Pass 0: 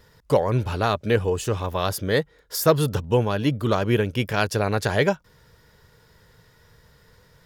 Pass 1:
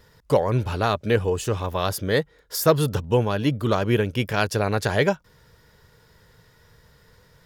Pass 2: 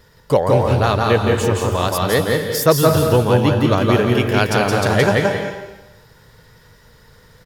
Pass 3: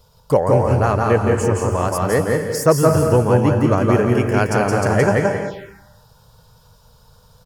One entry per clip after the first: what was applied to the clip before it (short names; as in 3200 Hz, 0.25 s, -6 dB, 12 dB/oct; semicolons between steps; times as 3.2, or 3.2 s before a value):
nothing audible
echo 0.169 s -3.5 dB; on a send at -4 dB: reverb RT60 0.95 s, pre-delay 0.166 s; on the sum: gain +4 dB
envelope phaser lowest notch 300 Hz, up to 3700 Hz, full sweep at -17 dBFS